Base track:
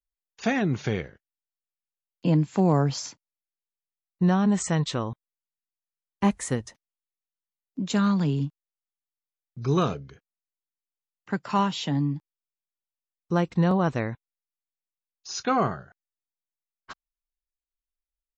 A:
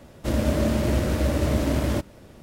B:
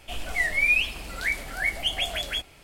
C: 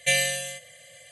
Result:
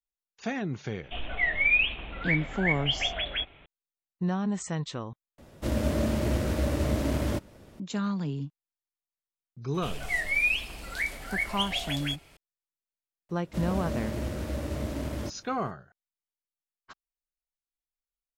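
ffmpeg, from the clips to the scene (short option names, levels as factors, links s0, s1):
-filter_complex "[2:a]asplit=2[s0][s1];[1:a]asplit=2[s2][s3];[0:a]volume=0.422[s4];[s0]aresample=8000,aresample=44100[s5];[s4]asplit=2[s6][s7];[s6]atrim=end=5.384[s8];[s2]atrim=end=2.42,asetpts=PTS-STARTPTS,volume=0.596[s9];[s7]atrim=start=7.796[s10];[s5]atrim=end=2.63,asetpts=PTS-STARTPTS,volume=0.841,afade=t=in:d=0.004:c=hsin,afade=t=out:st=2.626:d=0.004:c=hsin,adelay=1030[s11];[s1]atrim=end=2.63,asetpts=PTS-STARTPTS,volume=0.631,afade=t=in:d=0.004:c=hsin,afade=t=out:st=2.626:d=0.004:c=hsin,adelay=9740[s12];[s3]atrim=end=2.42,asetpts=PTS-STARTPTS,volume=0.316,afade=t=in:d=0.004:c=hsin,afade=t=out:st=2.416:d=0.004:c=hsin,adelay=13290[s13];[s8][s9]acrossfade=d=0.004:c1=hsin:c2=hsin[s14];[s14][s10]acrossfade=d=0.004:c1=hsin:c2=hsin[s15];[s15][s11][s12][s13]amix=inputs=4:normalize=0"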